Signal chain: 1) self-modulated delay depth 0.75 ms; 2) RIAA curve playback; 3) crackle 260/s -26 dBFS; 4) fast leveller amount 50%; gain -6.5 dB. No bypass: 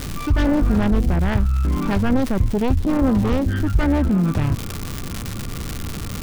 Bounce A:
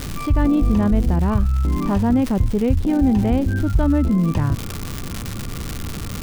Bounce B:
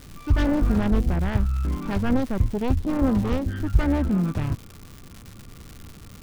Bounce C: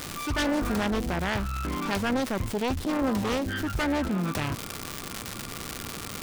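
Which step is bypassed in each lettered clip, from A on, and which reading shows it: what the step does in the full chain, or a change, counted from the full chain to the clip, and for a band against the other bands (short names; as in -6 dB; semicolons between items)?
1, 2 kHz band -4.0 dB; 4, crest factor change +3.0 dB; 2, 125 Hz band -11.5 dB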